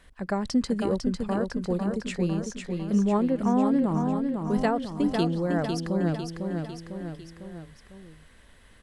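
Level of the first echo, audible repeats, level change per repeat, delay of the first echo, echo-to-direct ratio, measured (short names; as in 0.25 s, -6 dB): -5.0 dB, 4, -5.0 dB, 0.501 s, -3.5 dB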